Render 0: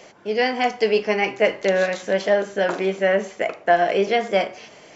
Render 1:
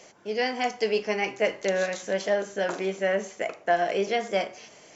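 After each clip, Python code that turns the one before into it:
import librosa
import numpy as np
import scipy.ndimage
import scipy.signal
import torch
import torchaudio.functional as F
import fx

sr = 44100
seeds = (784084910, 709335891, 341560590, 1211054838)

y = fx.peak_eq(x, sr, hz=6600.0, db=8.0, octaves=0.78)
y = F.gain(torch.from_numpy(y), -6.5).numpy()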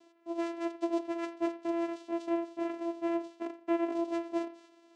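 y = fx.vocoder(x, sr, bands=4, carrier='saw', carrier_hz=337.0)
y = y + 10.0 ** (-20.5 / 20.0) * np.pad(y, (int(86 * sr / 1000.0), 0))[:len(y)]
y = F.gain(torch.from_numpy(y), -6.5).numpy()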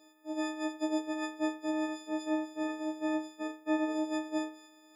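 y = fx.freq_snap(x, sr, grid_st=6)
y = fx.doubler(y, sr, ms=25.0, db=-13.0)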